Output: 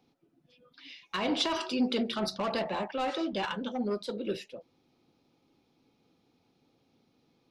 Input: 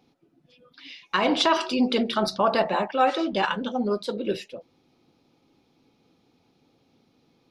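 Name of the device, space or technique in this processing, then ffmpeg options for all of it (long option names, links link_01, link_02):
one-band saturation: -filter_complex "[0:a]acrossover=split=400|2600[link_01][link_02][link_03];[link_02]asoftclip=type=tanh:threshold=-25dB[link_04];[link_01][link_04][link_03]amix=inputs=3:normalize=0,volume=-5.5dB"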